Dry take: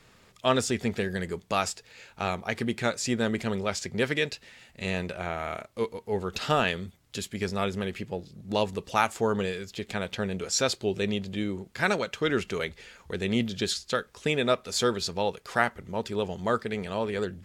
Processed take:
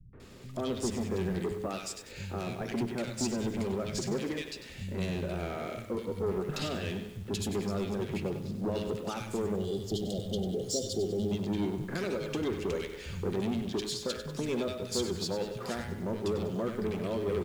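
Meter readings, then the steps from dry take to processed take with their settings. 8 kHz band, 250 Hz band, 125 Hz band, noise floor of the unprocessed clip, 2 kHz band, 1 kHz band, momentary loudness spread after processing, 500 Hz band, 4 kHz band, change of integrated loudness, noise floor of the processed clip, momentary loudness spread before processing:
−5.0 dB, −1.5 dB, −1.0 dB, −60 dBFS, −12.5 dB, −11.0 dB, 5 LU, −4.0 dB, −7.0 dB, −4.5 dB, −47 dBFS, 9 LU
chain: hum removal 105.2 Hz, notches 36
downward compressor 6 to 1, threshold −34 dBFS, peak gain reduction 15.5 dB
low shelf with overshoot 560 Hz +7.5 dB, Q 1.5
notch filter 460 Hz, Q 12
soft clipping −30 dBFS, distortion −10 dB
three-band delay without the direct sound lows, mids, highs 130/200 ms, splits 160/1,700 Hz
time-frequency box erased 0:09.56–0:11.31, 820–2,800 Hz
feedback echo at a low word length 97 ms, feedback 55%, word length 9 bits, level −10 dB
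level +3.5 dB

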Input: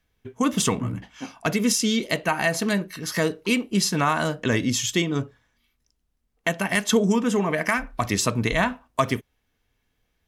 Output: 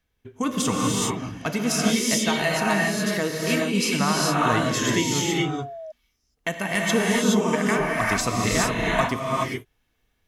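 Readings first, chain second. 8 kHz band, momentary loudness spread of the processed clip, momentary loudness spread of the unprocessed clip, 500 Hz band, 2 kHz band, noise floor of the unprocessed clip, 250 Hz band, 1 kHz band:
+1.5 dB, 9 LU, 8 LU, +1.0 dB, +1.5 dB, −73 dBFS, +0.5 dB, +2.5 dB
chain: reverb whose tail is shaped and stops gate 450 ms rising, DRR −3.5 dB
sound drawn into the spectrogram fall, 0:04.40–0:05.92, 620–1,300 Hz −33 dBFS
level −3.5 dB

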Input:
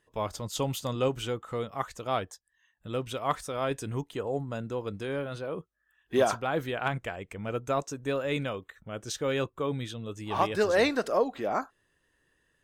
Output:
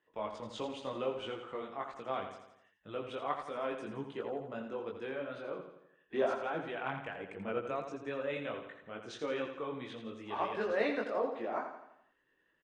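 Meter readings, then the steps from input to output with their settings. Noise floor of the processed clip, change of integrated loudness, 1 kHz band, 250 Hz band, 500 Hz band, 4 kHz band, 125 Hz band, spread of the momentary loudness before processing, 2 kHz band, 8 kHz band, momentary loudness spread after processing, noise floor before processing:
−75 dBFS, −7.5 dB, −6.5 dB, −7.5 dB, −6.5 dB, −10.0 dB, −16.0 dB, 11 LU, −6.5 dB, below −15 dB, 11 LU, −74 dBFS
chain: Chebyshev low-pass filter 10,000 Hz, order 8
three-way crossover with the lows and the highs turned down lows −16 dB, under 190 Hz, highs −20 dB, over 3,500 Hz
in parallel at +1 dB: downward compressor, threshold −36 dBFS, peak gain reduction 15 dB
on the sum: pitch vibrato 6.2 Hz 12 cents
multi-voice chorus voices 4, 1.5 Hz, delay 20 ms, depth 3 ms
on a send: repeating echo 84 ms, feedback 50%, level −8 dB
on the sum: level −6.5 dB

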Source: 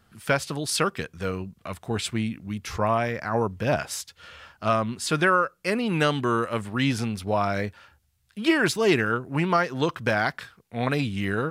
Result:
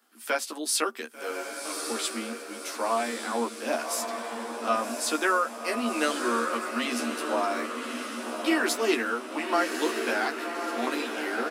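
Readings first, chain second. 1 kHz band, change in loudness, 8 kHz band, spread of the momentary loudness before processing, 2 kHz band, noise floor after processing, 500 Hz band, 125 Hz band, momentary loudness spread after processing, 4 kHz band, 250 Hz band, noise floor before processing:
−2.0 dB, −3.5 dB, +3.0 dB, 12 LU, −2.5 dB, −41 dBFS, −3.0 dB, below −25 dB, 9 LU, −1.0 dB, −4.5 dB, −66 dBFS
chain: Chebyshev high-pass with heavy ripple 230 Hz, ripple 3 dB
high-shelf EQ 5,700 Hz +11.5 dB
double-tracking delay 13 ms −3 dB
feedback delay with all-pass diffusion 1,140 ms, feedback 54%, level −5 dB
level −5 dB

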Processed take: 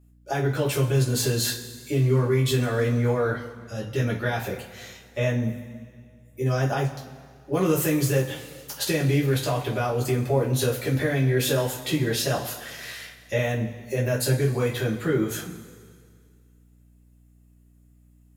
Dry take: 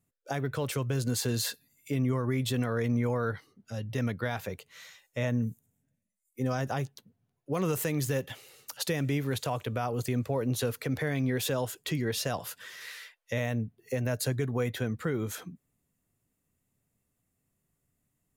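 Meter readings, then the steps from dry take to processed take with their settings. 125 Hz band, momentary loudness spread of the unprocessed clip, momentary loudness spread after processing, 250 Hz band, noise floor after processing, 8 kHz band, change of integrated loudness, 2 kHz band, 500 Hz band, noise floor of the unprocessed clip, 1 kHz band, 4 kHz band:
+7.5 dB, 13 LU, 14 LU, +5.0 dB, −56 dBFS, +6.5 dB, +6.5 dB, +6.5 dB, +8.0 dB, −80 dBFS, +5.5 dB, +6.5 dB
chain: coupled-rooms reverb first 0.26 s, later 2 s, from −18 dB, DRR −5.5 dB
mains hum 60 Hz, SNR 30 dB

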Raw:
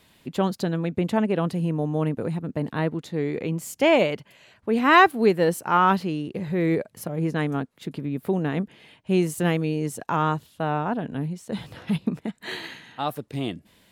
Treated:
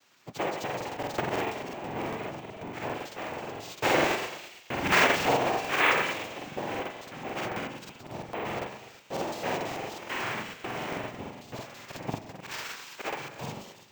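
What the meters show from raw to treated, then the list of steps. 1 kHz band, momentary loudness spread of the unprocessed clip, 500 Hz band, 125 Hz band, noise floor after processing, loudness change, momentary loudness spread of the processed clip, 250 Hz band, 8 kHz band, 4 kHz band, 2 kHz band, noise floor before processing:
−6.0 dB, 14 LU, −7.5 dB, −14.0 dB, −52 dBFS, −6.0 dB, 16 LU, −12.5 dB, −0.5 dB, 0.0 dB, −1.5 dB, −59 dBFS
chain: lower of the sound and its delayed copy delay 7.8 ms
high-pass filter 750 Hz 6 dB per octave
hard clipping −17 dBFS, distortion −12 dB
cochlear-implant simulation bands 4
high-frequency loss of the air 57 metres
echo with a time of its own for lows and highs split 2,500 Hz, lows 84 ms, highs 165 ms, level −5 dB
bad sample-rate conversion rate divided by 2×, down none, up hold
regular buffer underruns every 0.11 s, samples 2,048, repeat, from 0:00.65

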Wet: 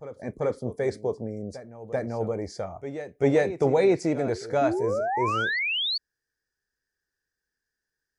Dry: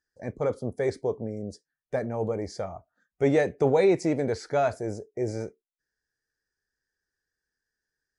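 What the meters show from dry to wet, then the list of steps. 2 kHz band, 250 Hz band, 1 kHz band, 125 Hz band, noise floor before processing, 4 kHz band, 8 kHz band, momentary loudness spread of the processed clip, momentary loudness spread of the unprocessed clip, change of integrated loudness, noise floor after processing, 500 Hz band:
+7.5 dB, +1.0 dB, +4.5 dB, +0.5 dB, below −85 dBFS, +16.0 dB, 0.0 dB, 13 LU, 15 LU, +1.5 dB, below −85 dBFS, +1.0 dB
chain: sound drawn into the spectrogram rise, 0:04.61–0:05.98, 270–4,600 Hz −27 dBFS
backwards echo 389 ms −13 dB

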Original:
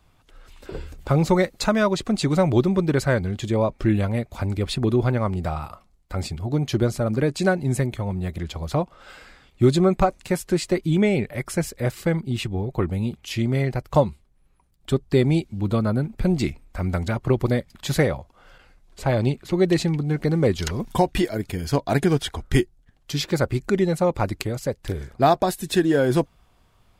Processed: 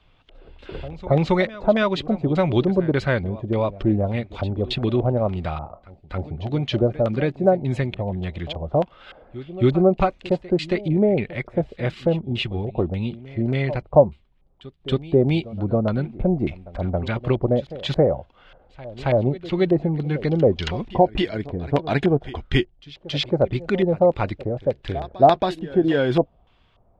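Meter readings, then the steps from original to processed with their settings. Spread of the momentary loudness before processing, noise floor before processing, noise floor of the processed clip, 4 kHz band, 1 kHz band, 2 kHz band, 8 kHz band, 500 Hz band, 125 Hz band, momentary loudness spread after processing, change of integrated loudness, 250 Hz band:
9 LU, −60 dBFS, −58 dBFS, +0.5 dB, +1.5 dB, −0.5 dB, below −15 dB, +2.5 dB, −0.5 dB, 11 LU, +1.0 dB, 0.0 dB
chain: auto-filter low-pass square 1.7 Hz 660–3,200 Hz
backwards echo 274 ms −17.5 dB
level −1 dB

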